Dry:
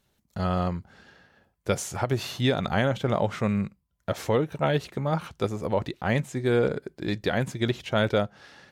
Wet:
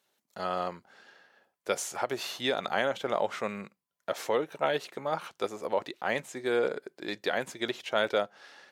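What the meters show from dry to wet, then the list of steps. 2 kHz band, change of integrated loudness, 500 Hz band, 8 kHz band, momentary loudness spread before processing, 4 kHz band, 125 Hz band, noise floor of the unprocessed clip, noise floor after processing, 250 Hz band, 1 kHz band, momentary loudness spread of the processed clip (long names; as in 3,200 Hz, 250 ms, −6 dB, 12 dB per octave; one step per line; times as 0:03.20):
−1.5 dB, −4.5 dB, −3.5 dB, −1.5 dB, 8 LU, −1.5 dB, −21.0 dB, −73 dBFS, −83 dBFS, −11.0 dB, −1.5 dB, 10 LU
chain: high-pass filter 420 Hz 12 dB per octave
level −1.5 dB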